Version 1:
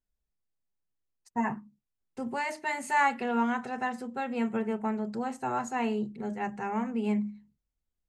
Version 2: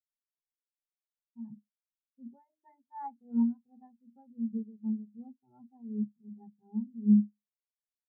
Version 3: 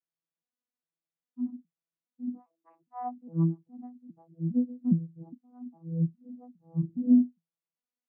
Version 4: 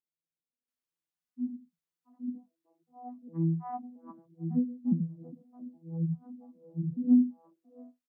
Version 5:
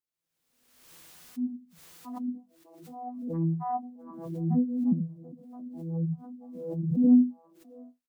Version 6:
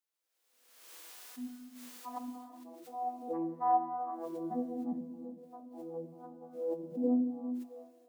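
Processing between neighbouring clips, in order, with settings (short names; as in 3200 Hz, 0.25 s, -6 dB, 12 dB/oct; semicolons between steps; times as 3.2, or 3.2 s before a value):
tremolo triangle 2.7 Hz, depth 60%; tilt -4.5 dB/oct; spectral expander 2.5:1; gain -2.5 dB
arpeggiated vocoder bare fifth, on E3, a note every 0.409 s; gain +4 dB
three bands offset in time mids, lows, highs 80/680 ms, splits 160/580 Hz
dynamic EQ 770 Hz, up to +6 dB, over -47 dBFS, Q 0.92; doubler 20 ms -14 dB; backwards sustainer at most 51 dB/s
harmonic-percussive split harmonic +5 dB; HPF 370 Hz 24 dB/oct; non-linear reverb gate 0.46 s flat, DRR 6.5 dB; gain -2 dB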